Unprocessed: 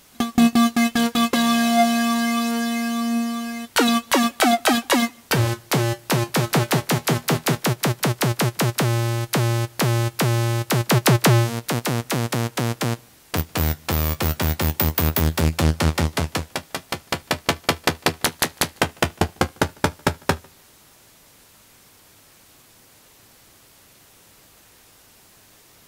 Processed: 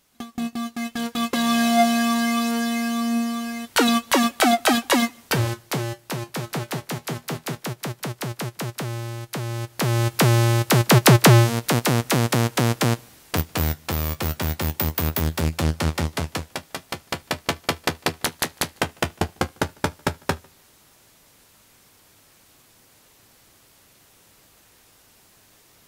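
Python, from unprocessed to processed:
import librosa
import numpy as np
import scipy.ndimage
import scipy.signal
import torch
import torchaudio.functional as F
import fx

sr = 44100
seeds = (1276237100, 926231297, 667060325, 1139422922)

y = fx.gain(x, sr, db=fx.line((0.64, -12.5), (1.61, -0.5), (5.17, -0.5), (6.14, -9.0), (9.45, -9.0), (10.18, 3.0), (12.92, 3.0), (13.96, -3.5)))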